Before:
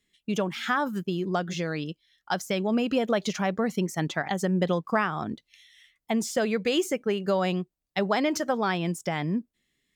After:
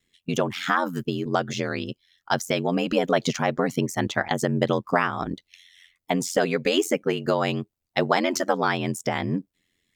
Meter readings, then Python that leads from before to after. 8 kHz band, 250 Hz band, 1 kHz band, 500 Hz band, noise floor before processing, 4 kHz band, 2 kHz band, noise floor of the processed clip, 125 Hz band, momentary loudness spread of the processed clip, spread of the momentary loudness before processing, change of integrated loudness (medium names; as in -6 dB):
+4.0 dB, +1.0 dB, +3.5 dB, +3.0 dB, -83 dBFS, +4.0 dB, +4.0 dB, -81 dBFS, +2.5 dB, 7 LU, 7 LU, +2.5 dB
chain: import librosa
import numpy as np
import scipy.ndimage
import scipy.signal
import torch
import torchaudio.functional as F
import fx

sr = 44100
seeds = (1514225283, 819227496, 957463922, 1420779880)

y = x * np.sin(2.0 * np.pi * 44.0 * np.arange(len(x)) / sr)
y = fx.hpss(y, sr, part='harmonic', gain_db=-5)
y = y * librosa.db_to_amplitude(7.5)